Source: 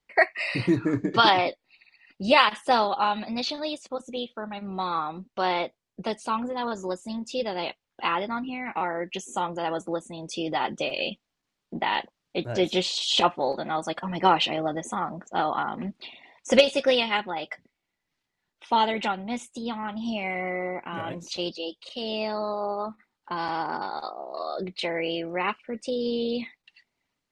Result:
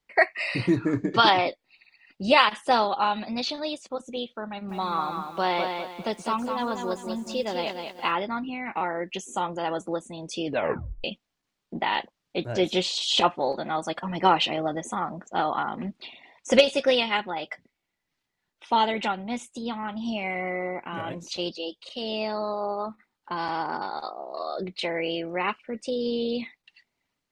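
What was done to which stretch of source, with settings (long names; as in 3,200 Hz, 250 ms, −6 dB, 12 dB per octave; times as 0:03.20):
0:04.49–0:08.12: feedback echo at a low word length 200 ms, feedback 35%, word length 9 bits, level −5.5 dB
0:10.45: tape stop 0.59 s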